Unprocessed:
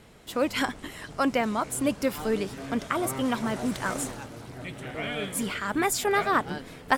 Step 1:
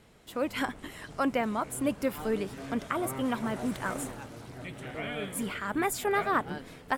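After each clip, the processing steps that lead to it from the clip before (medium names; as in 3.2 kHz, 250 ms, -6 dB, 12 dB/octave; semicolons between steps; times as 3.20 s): level rider gain up to 3 dB; dynamic bell 5.4 kHz, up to -7 dB, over -45 dBFS, Q 0.95; trim -6 dB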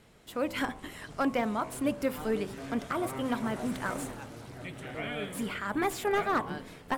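de-hum 64.34 Hz, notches 18; slew-rate limiter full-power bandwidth 82 Hz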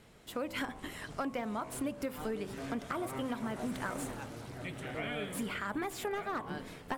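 compression 6:1, threshold -33 dBFS, peak gain reduction 10 dB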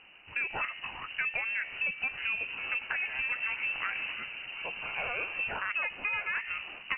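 frequency inversion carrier 2.9 kHz; trim +3.5 dB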